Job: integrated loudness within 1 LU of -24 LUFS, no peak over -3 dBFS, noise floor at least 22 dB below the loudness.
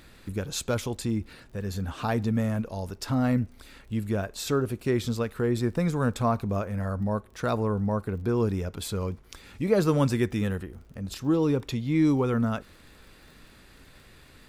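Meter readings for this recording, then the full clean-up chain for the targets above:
tick rate 44 per s; loudness -28.0 LUFS; peak level -9.5 dBFS; loudness target -24.0 LUFS
-> de-click; trim +4 dB

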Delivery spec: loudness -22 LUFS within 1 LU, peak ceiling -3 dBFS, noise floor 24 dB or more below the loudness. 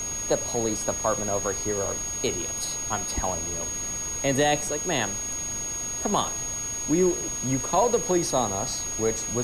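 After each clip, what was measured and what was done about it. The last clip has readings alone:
steady tone 6.6 kHz; tone level -29 dBFS; noise floor -31 dBFS; noise floor target -50 dBFS; loudness -25.5 LUFS; peak level -10.5 dBFS; loudness target -22.0 LUFS
-> band-stop 6.6 kHz, Q 30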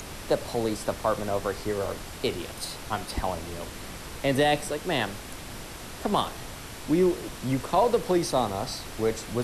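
steady tone not found; noise floor -41 dBFS; noise floor target -52 dBFS
-> noise print and reduce 11 dB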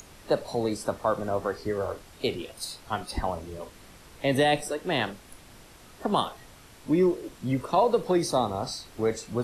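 noise floor -51 dBFS; noise floor target -52 dBFS
-> noise print and reduce 6 dB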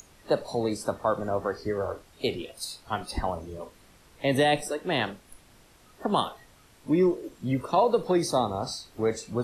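noise floor -57 dBFS; loudness -28.0 LUFS; peak level -11.5 dBFS; loudness target -22.0 LUFS
-> trim +6 dB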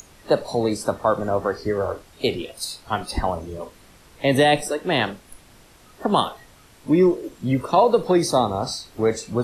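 loudness -22.0 LUFS; peak level -5.5 dBFS; noise floor -51 dBFS

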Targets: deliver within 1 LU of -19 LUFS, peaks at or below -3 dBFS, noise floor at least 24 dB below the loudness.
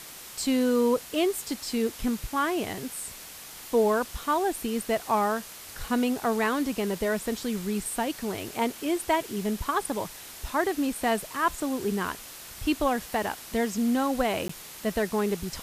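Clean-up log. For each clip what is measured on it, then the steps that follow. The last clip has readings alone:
dropouts 1; longest dropout 14 ms; noise floor -44 dBFS; noise floor target -52 dBFS; loudness -28.0 LUFS; peak level -13.0 dBFS; loudness target -19.0 LUFS
-> interpolate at 14.48 s, 14 ms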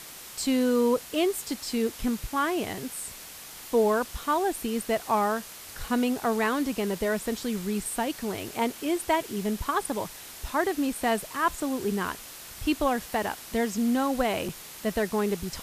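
dropouts 0; noise floor -44 dBFS; noise floor target -52 dBFS
-> noise print and reduce 8 dB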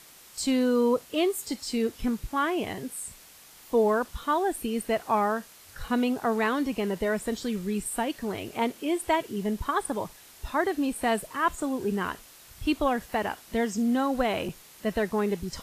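noise floor -52 dBFS; noise floor target -53 dBFS
-> noise print and reduce 6 dB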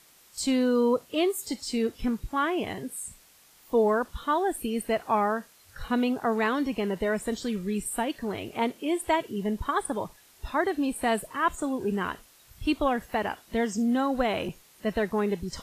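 noise floor -58 dBFS; loudness -28.5 LUFS; peak level -13.0 dBFS; loudness target -19.0 LUFS
-> trim +9.5 dB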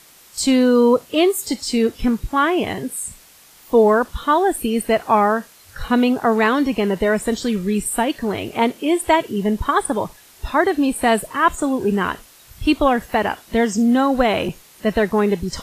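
loudness -19.0 LUFS; peak level -3.5 dBFS; noise floor -48 dBFS

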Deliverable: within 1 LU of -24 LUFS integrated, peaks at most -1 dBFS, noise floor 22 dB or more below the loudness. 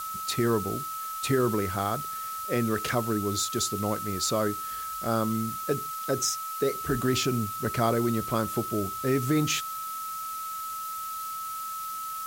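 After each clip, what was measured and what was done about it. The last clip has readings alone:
steady tone 1.3 kHz; tone level -33 dBFS; noise floor -35 dBFS; noise floor target -51 dBFS; loudness -28.5 LUFS; peak level -11.0 dBFS; loudness target -24.0 LUFS
-> band-stop 1.3 kHz, Q 30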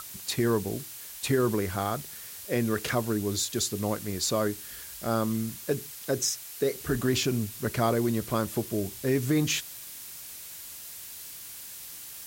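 steady tone not found; noise floor -43 dBFS; noise floor target -52 dBFS
-> noise reduction 9 dB, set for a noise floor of -43 dBFS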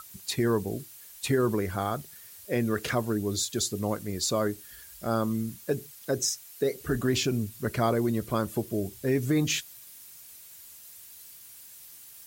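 noise floor -49 dBFS; noise floor target -51 dBFS
-> noise reduction 6 dB, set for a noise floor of -49 dBFS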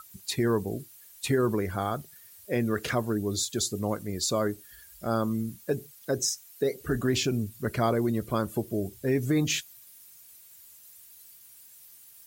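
noise floor -53 dBFS; loudness -29.0 LUFS; peak level -12.5 dBFS; loudness target -24.0 LUFS
-> trim +5 dB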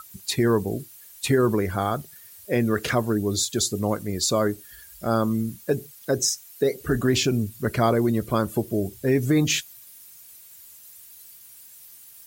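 loudness -24.0 LUFS; peak level -7.5 dBFS; noise floor -48 dBFS

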